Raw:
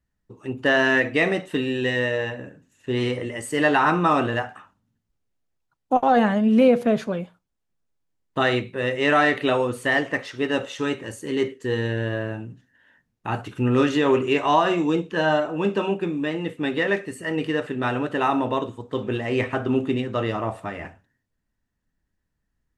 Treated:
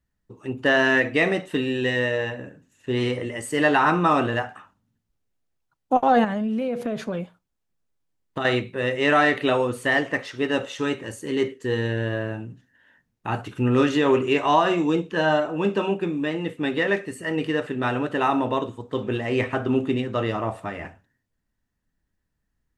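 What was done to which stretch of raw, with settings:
6.24–8.45 s: compression 10:1, threshold -22 dBFS

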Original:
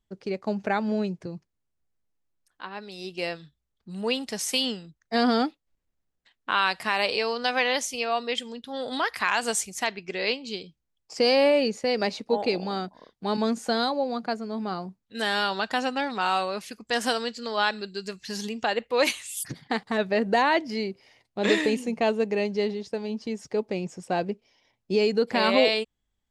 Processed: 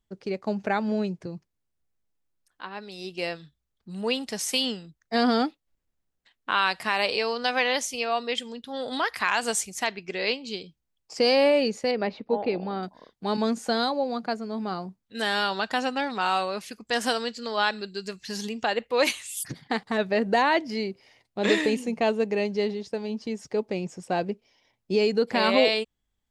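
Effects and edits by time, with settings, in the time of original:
11.91–12.83 s: distance through air 340 m

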